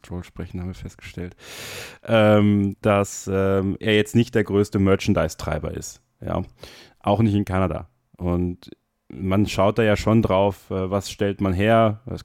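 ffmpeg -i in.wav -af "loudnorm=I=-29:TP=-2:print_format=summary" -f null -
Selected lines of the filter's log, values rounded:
Input Integrated:    -21.0 LUFS
Input True Peak:      -6.6 dBTP
Input LRA:             4.0 LU
Input Threshold:     -31.9 LUFS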